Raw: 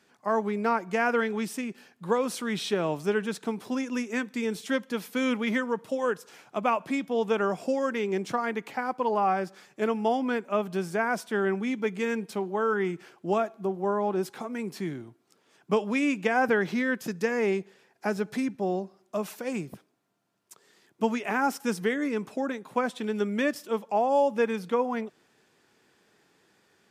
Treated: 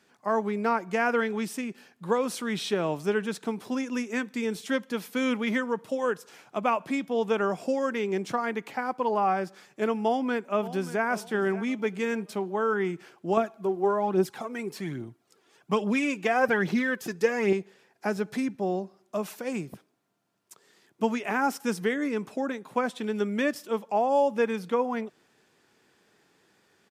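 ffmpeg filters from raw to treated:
ffmpeg -i in.wav -filter_complex "[0:a]asplit=2[link_01][link_02];[link_02]afade=type=in:start_time=10.03:duration=0.01,afade=type=out:start_time=11.06:duration=0.01,aecho=0:1:580|1160|1740:0.177828|0.0533484|0.0160045[link_03];[link_01][link_03]amix=inputs=2:normalize=0,asettb=1/sr,asplit=3[link_04][link_05][link_06];[link_04]atrim=end=13.374[link_07];[link_05]atrim=start=13.37:end=17.53,asetpts=PTS-STARTPTS,afade=type=in:duration=0.004:curve=qsin,afade=type=out:start_time=4.156:duration=0.004:curve=qsin,aphaser=in_gain=1:out_gain=1:delay=3:decay=0.5:speed=1.2:type=triangular[link_08];[link_06]atrim=start=17.526[link_09];[link_07][link_08]acrossfade=duration=0.004:curve1=hsin:curve2=qsin[link_10];[link_10][link_09]acrossfade=duration=0.004:curve1=qsin:curve2=hsin" out.wav

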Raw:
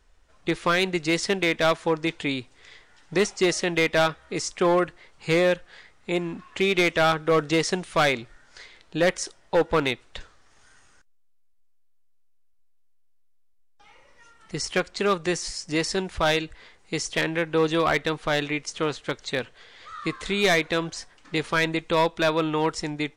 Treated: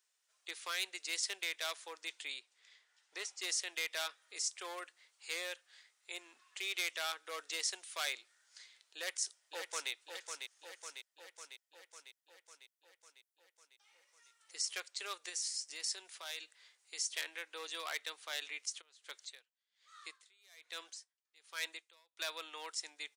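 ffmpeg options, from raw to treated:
ffmpeg -i in.wav -filter_complex "[0:a]asettb=1/sr,asplit=3[link_01][link_02][link_03];[link_01]atrim=end=2.394[link_04];[link_02]atrim=start=2.39:end=3.42,asetpts=PTS-STARTPTS,afade=type=in:duration=0.004:curve=qsin,afade=type=out:start_time=1.026:duration=0.004:curve=qsin,lowpass=frequency=3500:poles=1[link_05];[link_03]atrim=start=3.416[link_06];[link_04][link_05]acrossfade=duration=0.004:curve1=hsin:curve2=qsin[link_07];[link_07][link_06]acrossfade=duration=0.004:curve1=qsin:curve2=hsin,asplit=2[link_08][link_09];[link_09]afade=type=in:start_time=8.96:duration=0.01,afade=type=out:start_time=9.91:duration=0.01,aecho=0:1:550|1100|1650|2200|2750|3300|3850|4400|4950|5500:0.501187|0.325772|0.211752|0.137639|0.0894651|0.0581523|0.037799|0.0245693|0.0159701|0.0103805[link_10];[link_08][link_10]amix=inputs=2:normalize=0,asettb=1/sr,asplit=3[link_11][link_12][link_13];[link_11]atrim=end=15.294[link_14];[link_12]atrim=start=15.29:end=16.98,asetpts=PTS-STARTPTS,afade=type=in:duration=0.004:curve=qsin,afade=type=out:start_time=1.686:duration=0.004:curve=qsin,acompressor=threshold=-25dB:ratio=4:attack=3.2:release=140:knee=1:detection=peak[link_15];[link_13]atrim=start=16.976[link_16];[link_14][link_15]acrossfade=duration=0.004:curve1=hsin:curve2=qsin[link_17];[link_17][link_16]acrossfade=duration=0.004:curve1=qsin:curve2=hsin,asplit=3[link_18][link_19][link_20];[link_18]afade=type=out:start_time=18.8:duration=0.02[link_21];[link_19]aeval=exprs='val(0)*pow(10,-31*(0.5-0.5*cos(2*PI*1.2*n/s))/20)':channel_layout=same,afade=type=in:start_time=18.8:duration=0.02,afade=type=out:start_time=22.17:duration=0.02[link_22];[link_20]afade=type=in:start_time=22.17:duration=0.02[link_23];[link_21][link_22][link_23]amix=inputs=3:normalize=0,highpass=frequency=360:width=0.5412,highpass=frequency=360:width=1.3066,aderivative,volume=-4dB" out.wav

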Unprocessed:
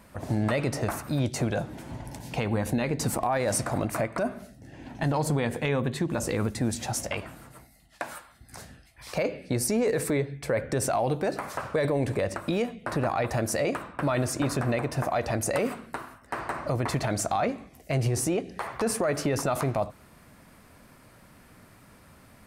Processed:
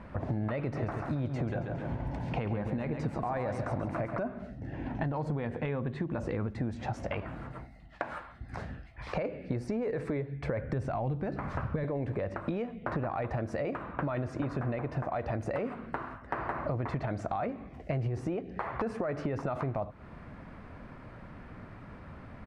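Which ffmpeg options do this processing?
ffmpeg -i in.wav -filter_complex "[0:a]asplit=3[link_01][link_02][link_03];[link_01]afade=type=out:start_time=0.74:duration=0.02[link_04];[link_02]aecho=1:1:137|274|411|548|685:0.447|0.188|0.0788|0.0331|0.0139,afade=type=in:start_time=0.74:duration=0.02,afade=type=out:start_time=4.15:duration=0.02[link_05];[link_03]afade=type=in:start_time=4.15:duration=0.02[link_06];[link_04][link_05][link_06]amix=inputs=3:normalize=0,asettb=1/sr,asplit=3[link_07][link_08][link_09];[link_07]atrim=end=10.374[link_10];[link_08]atrim=start=10.37:end=11.84,asetpts=PTS-STARTPTS,afade=type=in:duration=0.004:curve=qsin,afade=type=out:start_time=1.466:duration=0.004:curve=qsin,asubboost=boost=9:cutoff=240[link_11];[link_09]atrim=start=11.836[link_12];[link_10][link_11]acrossfade=duration=0.004:curve1=hsin:curve2=qsin[link_13];[link_13][link_12]acrossfade=duration=0.004:curve1=qsin:curve2=hsin,lowpass=2000,lowshelf=frequency=110:gain=5.5,acompressor=threshold=-37dB:ratio=5,volume=5.5dB" out.wav

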